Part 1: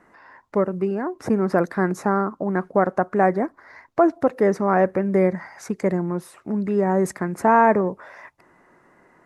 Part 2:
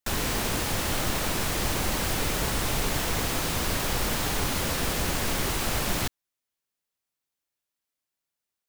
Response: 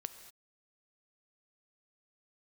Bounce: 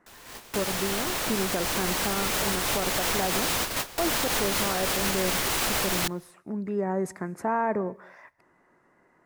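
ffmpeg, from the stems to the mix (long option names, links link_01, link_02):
-filter_complex "[0:a]volume=-10dB,asplit=3[link_01][link_02][link_03];[link_02]volume=-8dB[link_04];[1:a]lowshelf=frequency=280:gain=-11.5,dynaudnorm=framelen=450:gausssize=9:maxgain=5dB,volume=-1dB,asplit=2[link_05][link_06];[link_06]volume=-17.5dB[link_07];[link_03]apad=whole_len=382859[link_08];[link_05][link_08]sidechaingate=range=-33dB:threshold=-54dB:ratio=16:detection=peak[link_09];[2:a]atrim=start_sample=2205[link_10];[link_04][link_07]amix=inputs=2:normalize=0[link_11];[link_11][link_10]afir=irnorm=-1:irlink=0[link_12];[link_01][link_09][link_12]amix=inputs=3:normalize=0,alimiter=limit=-16dB:level=0:latency=1:release=61"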